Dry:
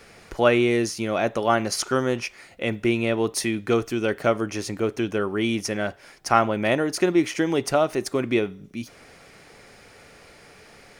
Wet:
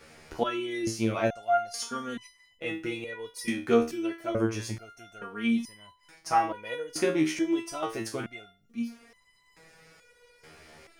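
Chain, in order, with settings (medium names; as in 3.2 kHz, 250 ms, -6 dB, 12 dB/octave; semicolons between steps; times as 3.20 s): resonator arpeggio 2.3 Hz 78–1000 Hz; trim +5 dB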